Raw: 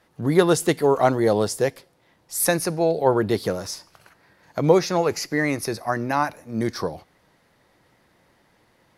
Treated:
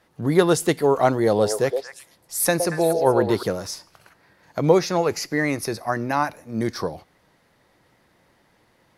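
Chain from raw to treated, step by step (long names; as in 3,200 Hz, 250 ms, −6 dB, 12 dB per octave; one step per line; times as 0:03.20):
0:01.27–0:03.43: echo through a band-pass that steps 116 ms, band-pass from 550 Hz, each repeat 1.4 octaves, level −3 dB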